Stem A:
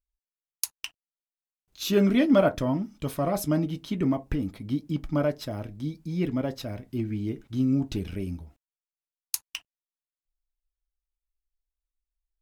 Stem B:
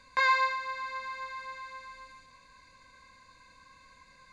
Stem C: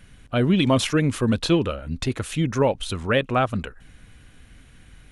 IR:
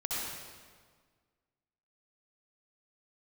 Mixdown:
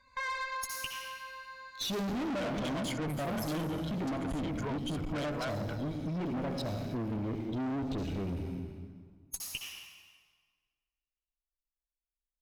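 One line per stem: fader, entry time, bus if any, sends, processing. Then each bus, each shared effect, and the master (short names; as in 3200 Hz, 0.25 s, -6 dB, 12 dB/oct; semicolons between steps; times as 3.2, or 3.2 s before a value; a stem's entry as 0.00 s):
-5.5 dB, 0.00 s, bus A, send -10.5 dB, sample leveller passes 3
-9.0 dB, 0.00 s, bus A, send -3 dB, dry
-8.0 dB, 2.05 s, no bus, no send, ripple EQ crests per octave 1.8, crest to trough 17 dB
bus A: 0.0 dB, loudest bins only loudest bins 32; limiter -17.5 dBFS, peak gain reduction 6.5 dB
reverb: on, RT60 1.7 s, pre-delay 58 ms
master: bell 10000 Hz -3.5 dB 0.3 oct; tube stage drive 28 dB, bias 0.35; compressor, threshold -33 dBFS, peak gain reduction 5 dB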